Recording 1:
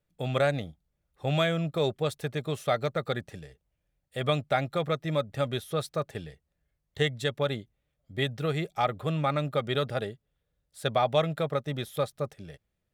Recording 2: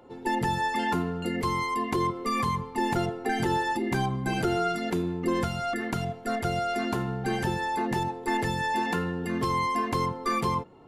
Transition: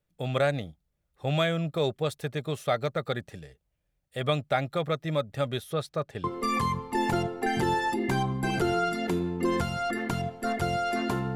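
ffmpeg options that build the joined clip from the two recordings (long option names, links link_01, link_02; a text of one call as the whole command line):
ffmpeg -i cue0.wav -i cue1.wav -filter_complex "[0:a]asettb=1/sr,asplit=3[link_01][link_02][link_03];[link_01]atrim=end=5.734[link_04];[link_02]atrim=start=5.73:end=6.24,asetpts=PTS-STARTPTS,afade=type=in:duration=0.004:curve=qsin,afade=type=out:start_time=0.506:duration=0.004:curve=qsin,highshelf=frequency=8000:gain=-9.5[link_05];[link_03]atrim=start=6.236[link_06];[link_04][link_05]acrossfade=duration=0.004:curve1=hsin:curve2=qsin[link_07];[link_07][link_06]acrossfade=duration=0.004:curve1=qsin:curve2=hsin,apad=whole_dur=11.35,atrim=end=11.35,atrim=end=6.242[link_08];[1:a]atrim=start=2.068:end=7.18[link_09];[link_08][link_09]acrossfade=duration=0.004:curve1=hsin:curve2=hsin" out.wav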